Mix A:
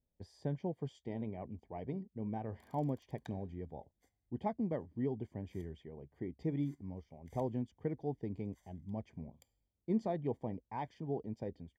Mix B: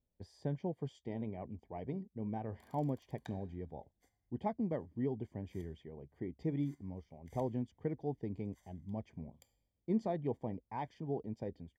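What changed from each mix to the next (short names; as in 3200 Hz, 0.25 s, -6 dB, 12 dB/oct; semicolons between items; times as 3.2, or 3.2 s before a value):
background: send +6.5 dB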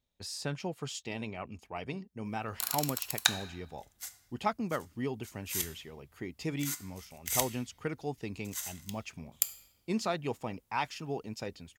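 background +10.5 dB; master: remove running mean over 33 samples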